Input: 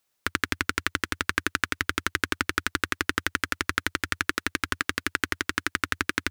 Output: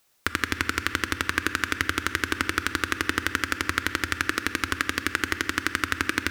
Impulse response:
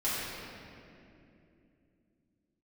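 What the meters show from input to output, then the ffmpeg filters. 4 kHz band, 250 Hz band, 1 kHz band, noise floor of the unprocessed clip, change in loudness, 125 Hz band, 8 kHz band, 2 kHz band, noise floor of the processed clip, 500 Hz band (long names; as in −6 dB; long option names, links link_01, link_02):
+1.0 dB, +2.5 dB, +1.5 dB, −75 dBFS, +1.5 dB, +3.0 dB, +1.0 dB, +1.5 dB, −40 dBFS, +2.0 dB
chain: -filter_complex "[0:a]asplit=2[link_01][link_02];[1:a]atrim=start_sample=2205,asetrate=48510,aresample=44100[link_03];[link_02][link_03]afir=irnorm=-1:irlink=0,volume=-23.5dB[link_04];[link_01][link_04]amix=inputs=2:normalize=0,alimiter=level_in=10dB:limit=-1dB:release=50:level=0:latency=1,volume=-1dB"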